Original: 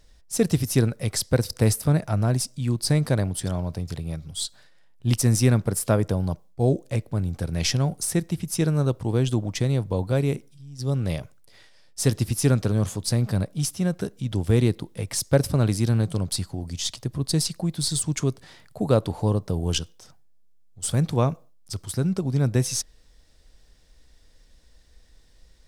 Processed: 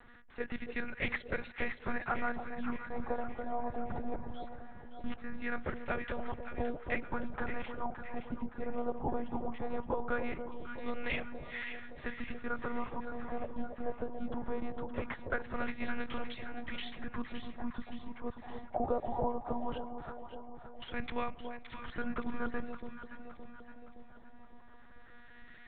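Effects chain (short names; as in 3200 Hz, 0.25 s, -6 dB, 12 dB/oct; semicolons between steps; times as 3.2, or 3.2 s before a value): tilt shelf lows -8 dB, about 730 Hz; compressor 10:1, threshold -35 dBFS, peak gain reduction 21 dB; LFO low-pass sine 0.2 Hz 770–2200 Hz; monotone LPC vocoder at 8 kHz 240 Hz; echo with dull and thin repeats by turns 0.284 s, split 890 Hz, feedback 71%, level -6 dB; gain +3 dB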